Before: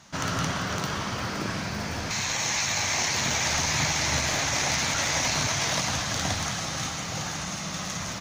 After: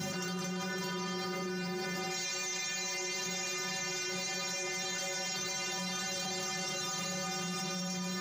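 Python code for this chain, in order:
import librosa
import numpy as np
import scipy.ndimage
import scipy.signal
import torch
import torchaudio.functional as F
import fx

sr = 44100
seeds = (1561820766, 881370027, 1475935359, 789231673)

y = fx.add_hum(x, sr, base_hz=50, snr_db=12)
y = fx.graphic_eq_31(y, sr, hz=(400, 1000, 10000), db=(12, -4, -10))
y = fx.dmg_noise_colour(y, sr, seeds[0], colour='brown', level_db=-44.0)
y = scipy.signal.sosfilt(scipy.signal.butter(4, 120.0, 'highpass', fs=sr, output='sos'), y)
y = fx.peak_eq(y, sr, hz=12000.0, db=5.0, octaves=1.5)
y = fx.stiff_resonator(y, sr, f0_hz=180.0, decay_s=0.54, stiffness=0.008)
y = fx.env_flatten(y, sr, amount_pct=100)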